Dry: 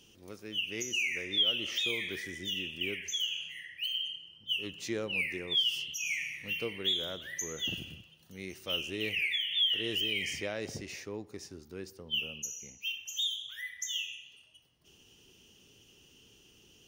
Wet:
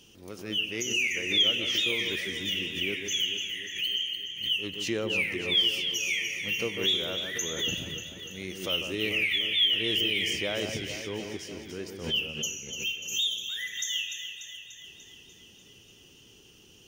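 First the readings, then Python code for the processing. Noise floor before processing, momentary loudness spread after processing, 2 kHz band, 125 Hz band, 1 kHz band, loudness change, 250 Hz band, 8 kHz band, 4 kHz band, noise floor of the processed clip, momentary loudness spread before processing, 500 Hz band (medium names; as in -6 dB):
-62 dBFS, 15 LU, +5.0 dB, +6.0 dB, +6.0 dB, +5.0 dB, +6.0 dB, +5.5 dB, +5.0 dB, -55 dBFS, 15 LU, +5.5 dB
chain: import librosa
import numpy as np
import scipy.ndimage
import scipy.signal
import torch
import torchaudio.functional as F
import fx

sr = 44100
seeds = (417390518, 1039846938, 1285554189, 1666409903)

y = fx.echo_alternate(x, sr, ms=147, hz=1500.0, feedback_pct=78, wet_db=-6.5)
y = fx.pre_swell(y, sr, db_per_s=100.0)
y = y * librosa.db_to_amplitude(4.0)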